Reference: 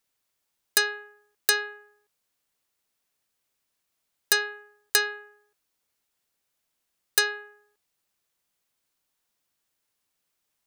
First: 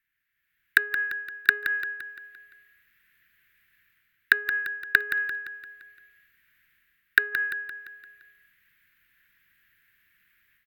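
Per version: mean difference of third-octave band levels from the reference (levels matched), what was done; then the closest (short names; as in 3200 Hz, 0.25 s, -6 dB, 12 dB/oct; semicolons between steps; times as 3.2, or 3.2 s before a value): 8.5 dB: treble ducked by the level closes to 390 Hz, closed at -22 dBFS; EQ curve 110 Hz 0 dB, 420 Hz -13 dB, 620 Hz -29 dB, 1100 Hz -13 dB, 1700 Hz +13 dB, 5600 Hz -20 dB, 9600 Hz -19 dB, 16000 Hz +3 dB; AGC gain up to 15 dB; feedback echo 0.172 s, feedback 51%, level -9.5 dB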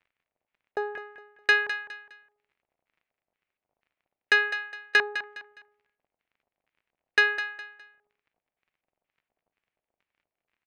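6.5 dB: gate -55 dBFS, range -7 dB; crackle 32/s -55 dBFS; LFO low-pass square 2.1 Hz 710–2300 Hz; feedback echo 0.206 s, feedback 31%, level -11 dB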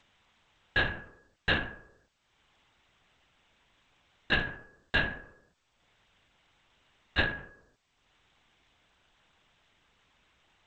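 13.5 dB: in parallel at 0 dB: upward compressor, threshold -34 dBFS; on the sum: resonator 980 Hz, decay 0.29 s, mix 60%; LPC vocoder at 8 kHz whisper; G.722 64 kbps 16000 Hz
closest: second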